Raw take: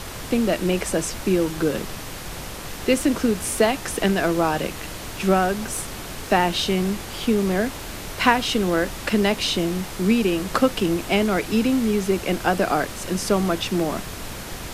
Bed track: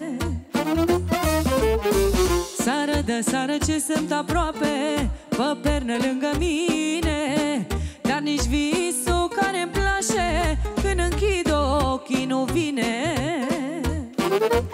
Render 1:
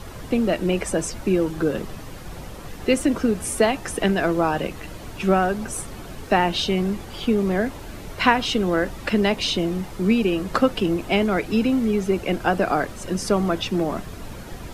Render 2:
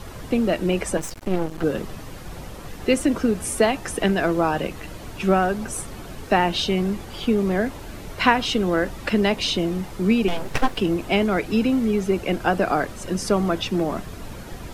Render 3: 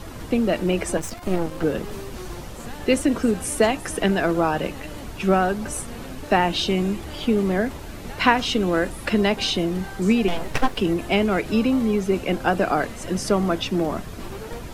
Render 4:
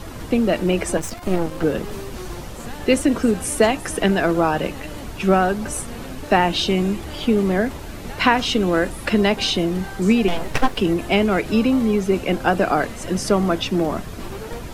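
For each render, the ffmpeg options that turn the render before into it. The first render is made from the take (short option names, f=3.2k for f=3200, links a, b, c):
-af "afftdn=nr=10:nf=-34"
-filter_complex "[0:a]asettb=1/sr,asplit=3[a][b][c];[a]atrim=end=0.974[d];[b]atrim=start=0.97:end=1.64,asetpts=PTS-STARTPTS,afade=t=in:d=0.004:c=qsin,afade=t=out:st=0.666:d=0.004:c=qsin,aeval=exprs='max(val(0),0)':c=same[e];[c]atrim=start=1.636[f];[d][e]acrossfade=d=0.004:c1=hsin:c2=qsin[g];[g][f]acrossfade=d=0.004:c1=qsin:c2=hsin,asettb=1/sr,asplit=3[h][i][j];[h]atrim=end=10.284[k];[i]atrim=start=10.28:end=10.77,asetpts=PTS-STARTPTS,afade=t=in:d=0.004:c=qsin,afade=t=out:st=0.486:d=0.004:c=qsin,aeval=exprs='abs(val(0))':c=same[l];[j]atrim=start=10.766[m];[k][l]acrossfade=d=0.004:c1=hsin:c2=qsin[n];[n][m]acrossfade=d=0.004:c1=qsin:c2=hsin"
-filter_complex "[1:a]volume=-17.5dB[a];[0:a][a]amix=inputs=2:normalize=0"
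-af "volume=2.5dB,alimiter=limit=-2dB:level=0:latency=1"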